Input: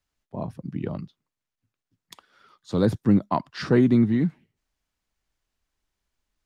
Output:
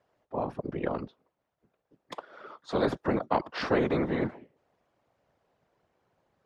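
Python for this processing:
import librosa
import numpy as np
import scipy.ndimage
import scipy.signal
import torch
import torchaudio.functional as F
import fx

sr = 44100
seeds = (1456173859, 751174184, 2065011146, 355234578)

y = fx.whisperise(x, sr, seeds[0])
y = fx.bandpass_q(y, sr, hz=570.0, q=1.8)
y = fx.spectral_comp(y, sr, ratio=2.0)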